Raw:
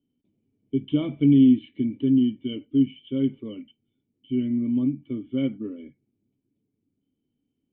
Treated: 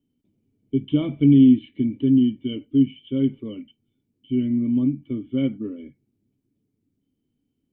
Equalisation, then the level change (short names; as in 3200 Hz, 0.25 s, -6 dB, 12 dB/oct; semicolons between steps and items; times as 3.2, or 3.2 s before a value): low shelf 120 Hz +6 dB; +1.5 dB